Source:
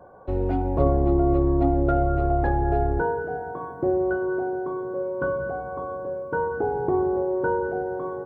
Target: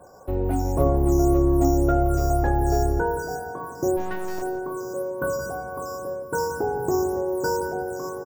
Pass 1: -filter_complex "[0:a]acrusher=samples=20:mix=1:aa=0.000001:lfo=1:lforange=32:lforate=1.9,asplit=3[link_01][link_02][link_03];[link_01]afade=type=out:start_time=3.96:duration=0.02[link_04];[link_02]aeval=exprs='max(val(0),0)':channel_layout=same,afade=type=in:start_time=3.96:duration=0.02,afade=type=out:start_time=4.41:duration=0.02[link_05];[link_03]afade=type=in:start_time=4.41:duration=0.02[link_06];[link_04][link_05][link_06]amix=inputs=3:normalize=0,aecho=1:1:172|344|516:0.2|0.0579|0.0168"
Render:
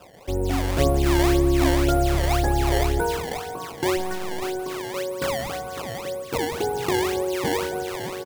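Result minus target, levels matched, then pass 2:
sample-and-hold swept by an LFO: distortion +14 dB
-filter_complex "[0:a]acrusher=samples=4:mix=1:aa=0.000001:lfo=1:lforange=6.4:lforate=1.9,asplit=3[link_01][link_02][link_03];[link_01]afade=type=out:start_time=3.96:duration=0.02[link_04];[link_02]aeval=exprs='max(val(0),0)':channel_layout=same,afade=type=in:start_time=3.96:duration=0.02,afade=type=out:start_time=4.41:duration=0.02[link_05];[link_03]afade=type=in:start_time=4.41:duration=0.02[link_06];[link_04][link_05][link_06]amix=inputs=3:normalize=0,aecho=1:1:172|344|516:0.2|0.0579|0.0168"

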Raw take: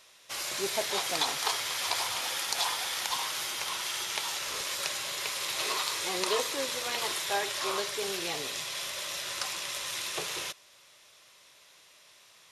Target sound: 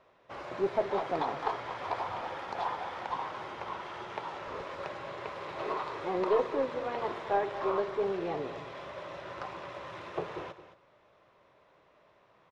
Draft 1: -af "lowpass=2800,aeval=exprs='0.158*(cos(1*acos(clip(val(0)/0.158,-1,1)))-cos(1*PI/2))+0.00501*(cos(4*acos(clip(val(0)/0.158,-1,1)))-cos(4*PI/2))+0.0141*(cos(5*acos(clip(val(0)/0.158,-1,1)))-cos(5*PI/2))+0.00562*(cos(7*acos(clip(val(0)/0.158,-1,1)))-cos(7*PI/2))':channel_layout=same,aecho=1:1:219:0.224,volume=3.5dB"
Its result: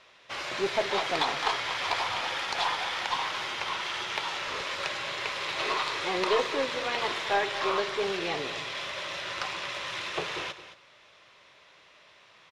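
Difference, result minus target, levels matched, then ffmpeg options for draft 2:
2,000 Hz band +7.0 dB
-af "lowpass=910,aeval=exprs='0.158*(cos(1*acos(clip(val(0)/0.158,-1,1)))-cos(1*PI/2))+0.00501*(cos(4*acos(clip(val(0)/0.158,-1,1)))-cos(4*PI/2))+0.0141*(cos(5*acos(clip(val(0)/0.158,-1,1)))-cos(5*PI/2))+0.00562*(cos(7*acos(clip(val(0)/0.158,-1,1)))-cos(7*PI/2))':channel_layout=same,aecho=1:1:219:0.224,volume=3.5dB"

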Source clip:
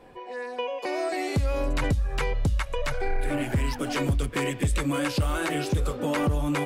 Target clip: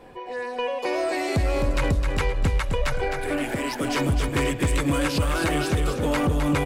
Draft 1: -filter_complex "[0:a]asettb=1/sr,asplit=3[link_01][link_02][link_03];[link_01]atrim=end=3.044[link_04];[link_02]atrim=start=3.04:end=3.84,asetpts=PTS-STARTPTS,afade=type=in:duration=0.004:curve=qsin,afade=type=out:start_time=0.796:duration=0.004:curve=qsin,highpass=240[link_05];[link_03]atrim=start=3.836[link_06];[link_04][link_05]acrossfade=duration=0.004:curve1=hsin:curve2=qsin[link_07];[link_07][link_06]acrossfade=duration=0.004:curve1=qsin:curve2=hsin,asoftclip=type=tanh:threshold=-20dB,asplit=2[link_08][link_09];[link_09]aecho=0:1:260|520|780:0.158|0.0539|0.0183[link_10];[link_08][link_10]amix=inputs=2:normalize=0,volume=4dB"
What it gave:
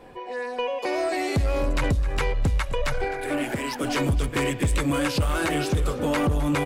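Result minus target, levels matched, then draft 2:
echo-to-direct −9.5 dB
-filter_complex "[0:a]asettb=1/sr,asplit=3[link_01][link_02][link_03];[link_01]atrim=end=3.044[link_04];[link_02]atrim=start=3.04:end=3.84,asetpts=PTS-STARTPTS,afade=type=in:duration=0.004:curve=qsin,afade=type=out:start_time=0.796:duration=0.004:curve=qsin,highpass=240[link_05];[link_03]atrim=start=3.836[link_06];[link_04][link_05]acrossfade=duration=0.004:curve1=hsin:curve2=qsin[link_07];[link_07][link_06]acrossfade=duration=0.004:curve1=qsin:curve2=hsin,asoftclip=type=tanh:threshold=-20dB,asplit=2[link_08][link_09];[link_09]aecho=0:1:260|520|780|1040:0.473|0.161|0.0547|0.0186[link_10];[link_08][link_10]amix=inputs=2:normalize=0,volume=4dB"

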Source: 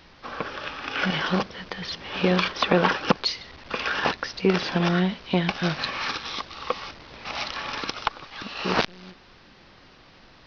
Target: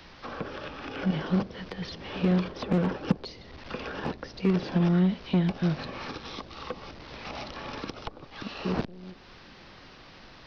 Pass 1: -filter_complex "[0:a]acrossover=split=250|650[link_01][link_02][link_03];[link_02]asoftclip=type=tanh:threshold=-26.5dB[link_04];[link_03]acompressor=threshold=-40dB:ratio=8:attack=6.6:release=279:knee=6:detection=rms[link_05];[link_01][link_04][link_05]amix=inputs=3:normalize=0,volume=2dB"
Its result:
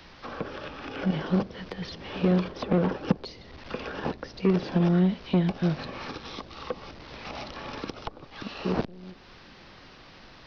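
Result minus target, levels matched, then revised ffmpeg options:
soft clipping: distortion −5 dB
-filter_complex "[0:a]acrossover=split=250|650[link_01][link_02][link_03];[link_02]asoftclip=type=tanh:threshold=-34dB[link_04];[link_03]acompressor=threshold=-40dB:ratio=8:attack=6.6:release=279:knee=6:detection=rms[link_05];[link_01][link_04][link_05]amix=inputs=3:normalize=0,volume=2dB"

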